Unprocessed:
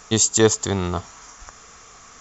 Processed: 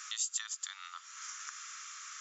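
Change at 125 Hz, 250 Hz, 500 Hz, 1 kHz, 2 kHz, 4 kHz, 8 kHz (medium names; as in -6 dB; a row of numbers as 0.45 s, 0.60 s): under -40 dB, under -40 dB, under -40 dB, -16.5 dB, -13.5 dB, -14.0 dB, no reading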